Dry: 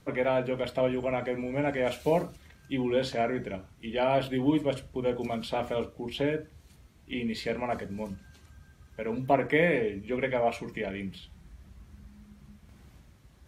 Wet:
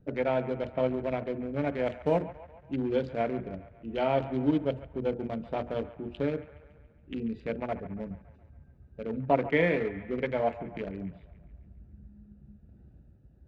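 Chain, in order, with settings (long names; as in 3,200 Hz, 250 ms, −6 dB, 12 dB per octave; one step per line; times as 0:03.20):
adaptive Wiener filter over 41 samples
high-frequency loss of the air 87 metres
delay with a band-pass on its return 140 ms, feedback 56%, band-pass 1,300 Hz, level −12.5 dB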